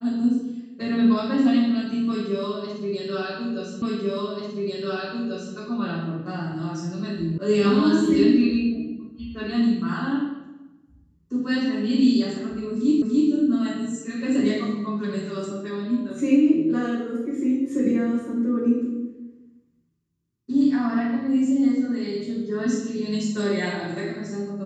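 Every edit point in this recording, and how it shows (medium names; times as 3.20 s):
3.82 s: repeat of the last 1.74 s
7.38 s: sound stops dead
13.02 s: repeat of the last 0.29 s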